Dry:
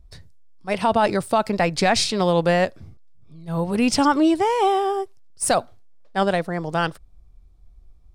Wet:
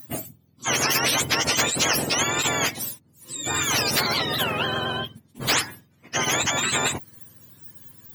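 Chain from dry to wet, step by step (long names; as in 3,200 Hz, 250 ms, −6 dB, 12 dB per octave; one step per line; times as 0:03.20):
frequency axis turned over on the octave scale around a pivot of 1,100 Hz
every bin compressed towards the loudest bin 10 to 1
level −2.5 dB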